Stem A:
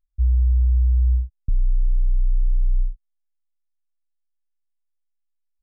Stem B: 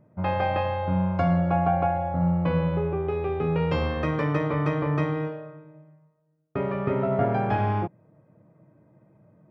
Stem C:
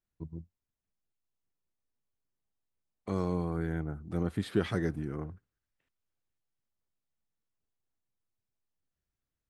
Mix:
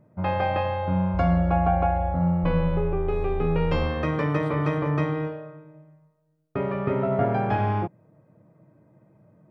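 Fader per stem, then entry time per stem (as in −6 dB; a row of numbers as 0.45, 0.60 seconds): −12.0, +0.5, −14.0 decibels; 0.95, 0.00, 0.00 seconds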